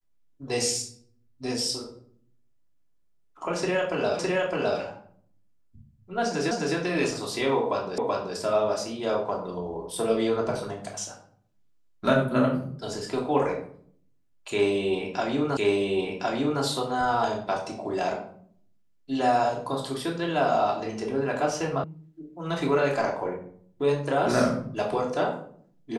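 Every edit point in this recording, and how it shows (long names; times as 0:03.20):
0:04.19: the same again, the last 0.61 s
0:06.51: the same again, the last 0.26 s
0:07.98: the same again, the last 0.38 s
0:15.57: the same again, the last 1.06 s
0:21.84: cut off before it has died away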